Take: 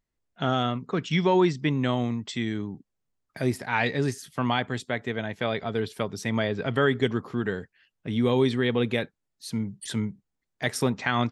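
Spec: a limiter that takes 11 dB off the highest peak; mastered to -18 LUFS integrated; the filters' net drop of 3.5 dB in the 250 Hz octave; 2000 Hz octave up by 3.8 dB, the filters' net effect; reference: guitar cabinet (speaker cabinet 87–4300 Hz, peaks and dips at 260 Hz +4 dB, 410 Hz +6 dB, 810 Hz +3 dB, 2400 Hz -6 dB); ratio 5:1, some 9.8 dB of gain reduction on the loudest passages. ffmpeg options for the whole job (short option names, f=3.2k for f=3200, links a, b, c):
-af "equalizer=f=250:t=o:g=-8.5,equalizer=f=2k:t=o:g=6.5,acompressor=threshold=-28dB:ratio=5,alimiter=limit=-24dB:level=0:latency=1,highpass=87,equalizer=f=260:t=q:w=4:g=4,equalizer=f=410:t=q:w=4:g=6,equalizer=f=810:t=q:w=4:g=3,equalizer=f=2.4k:t=q:w=4:g=-6,lowpass=f=4.3k:w=0.5412,lowpass=f=4.3k:w=1.3066,volume=17.5dB"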